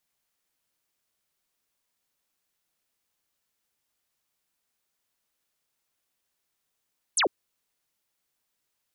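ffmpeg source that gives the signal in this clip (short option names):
-f lavfi -i "aevalsrc='0.1*clip(t/0.002,0,1)*clip((0.1-t)/0.002,0,1)*sin(2*PI*11000*0.1/log(290/11000)*(exp(log(290/11000)*t/0.1)-1))':d=0.1:s=44100"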